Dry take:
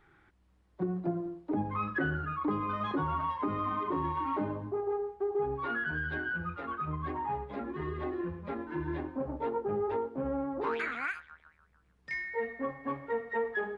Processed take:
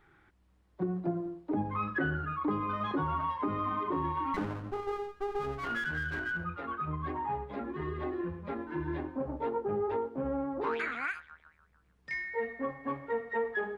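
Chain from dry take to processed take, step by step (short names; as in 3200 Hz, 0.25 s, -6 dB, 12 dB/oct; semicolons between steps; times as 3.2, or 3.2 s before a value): 4.34–6.44 minimum comb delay 0.69 ms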